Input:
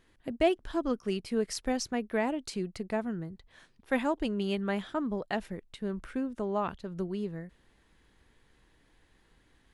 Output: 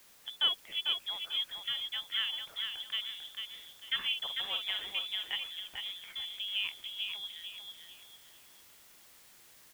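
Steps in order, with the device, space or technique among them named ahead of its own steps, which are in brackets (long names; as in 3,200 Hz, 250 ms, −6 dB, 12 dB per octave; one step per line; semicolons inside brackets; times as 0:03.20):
scrambled radio voice (band-pass filter 360–3,100 Hz; voice inversion scrambler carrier 3,700 Hz; white noise bed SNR 20 dB)
0:03.98–0:04.93: double-tracking delay 50 ms −7 dB
repeating echo 446 ms, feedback 32%, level −5.5 dB
level −3 dB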